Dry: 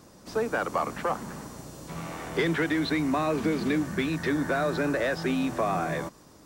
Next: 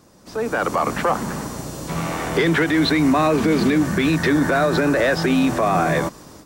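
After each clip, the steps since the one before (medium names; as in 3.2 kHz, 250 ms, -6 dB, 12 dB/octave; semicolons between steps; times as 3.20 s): peak limiter -21.5 dBFS, peak gain reduction 6.5 dB; level rider gain up to 12 dB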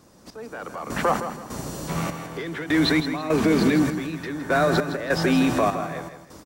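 trance gate "xx....xx..xx" 100 bpm -12 dB; feedback delay 162 ms, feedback 31%, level -10 dB; trim -2 dB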